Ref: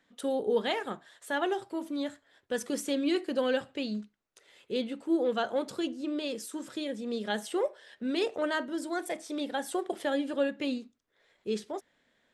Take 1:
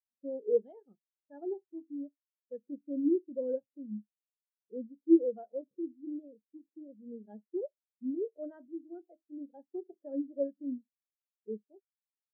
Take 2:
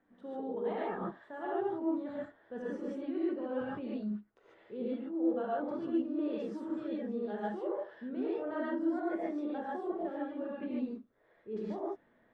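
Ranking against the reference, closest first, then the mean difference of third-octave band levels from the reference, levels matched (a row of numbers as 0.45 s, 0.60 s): 2, 1; 9.5 dB, 16.5 dB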